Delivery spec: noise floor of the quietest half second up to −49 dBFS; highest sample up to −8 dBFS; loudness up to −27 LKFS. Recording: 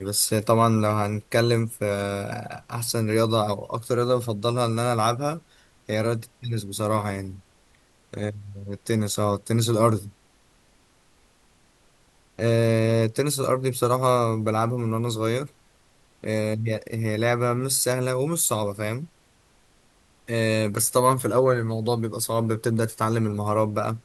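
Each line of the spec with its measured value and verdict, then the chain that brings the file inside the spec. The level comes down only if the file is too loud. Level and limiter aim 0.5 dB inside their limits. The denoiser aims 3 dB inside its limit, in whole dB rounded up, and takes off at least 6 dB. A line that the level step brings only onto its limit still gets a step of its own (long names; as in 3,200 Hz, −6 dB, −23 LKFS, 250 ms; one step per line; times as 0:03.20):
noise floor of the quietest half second −60 dBFS: in spec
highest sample −6.0 dBFS: out of spec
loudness −24.0 LKFS: out of spec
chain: level −3.5 dB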